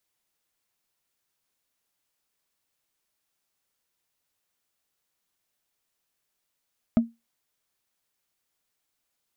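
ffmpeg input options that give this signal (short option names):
-f lavfi -i "aevalsrc='0.251*pow(10,-3*t/0.21)*sin(2*PI*231*t)+0.0794*pow(10,-3*t/0.062)*sin(2*PI*636.9*t)+0.0251*pow(10,-3*t/0.028)*sin(2*PI*1248.3*t)+0.00794*pow(10,-3*t/0.015)*sin(2*PI*2063.5*t)+0.00251*pow(10,-3*t/0.009)*sin(2*PI*3081.5*t)':d=0.45:s=44100"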